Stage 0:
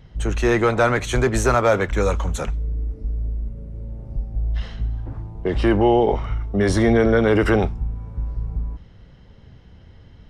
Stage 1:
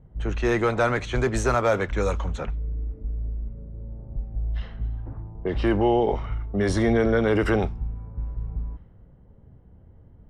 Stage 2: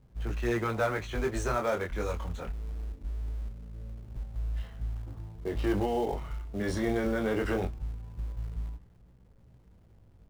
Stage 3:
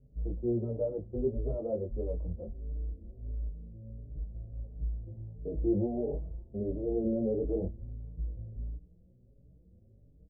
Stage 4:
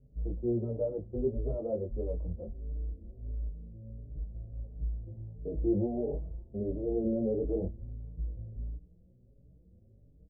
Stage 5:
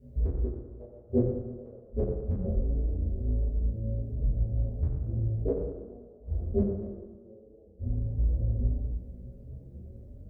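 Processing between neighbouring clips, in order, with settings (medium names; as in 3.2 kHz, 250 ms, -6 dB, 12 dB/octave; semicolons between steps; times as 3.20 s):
level-controlled noise filter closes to 760 Hz, open at -13.5 dBFS; trim -4.5 dB
chorus 0.22 Hz, delay 16.5 ms, depth 6.8 ms; in parallel at -9 dB: companded quantiser 4-bit; on the sum: trim -7.5 dB
elliptic low-pass 580 Hz, stop band 80 dB; endless flanger 4.9 ms +1.5 Hz; trim +2 dB
no audible change
inverted gate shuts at -27 dBFS, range -37 dB; reverberation RT60 1.4 s, pre-delay 6 ms, DRR -9.5 dB; trim +4 dB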